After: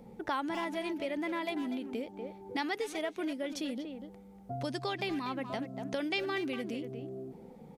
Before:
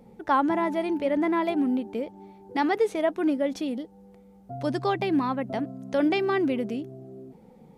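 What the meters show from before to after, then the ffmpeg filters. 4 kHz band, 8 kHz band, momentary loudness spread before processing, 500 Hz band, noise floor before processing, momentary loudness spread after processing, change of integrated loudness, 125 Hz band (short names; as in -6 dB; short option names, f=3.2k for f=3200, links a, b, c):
-0.5 dB, n/a, 13 LU, -10.0 dB, -53 dBFS, 10 LU, -10.0 dB, -6.5 dB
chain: -filter_complex "[0:a]asplit=2[a][b];[b]adelay=240,highpass=300,lowpass=3.4k,asoftclip=type=hard:threshold=-22dB,volume=-10dB[c];[a][c]amix=inputs=2:normalize=0,acrossover=split=2100[d][e];[d]acompressor=threshold=-34dB:ratio=6[f];[f][e]amix=inputs=2:normalize=0"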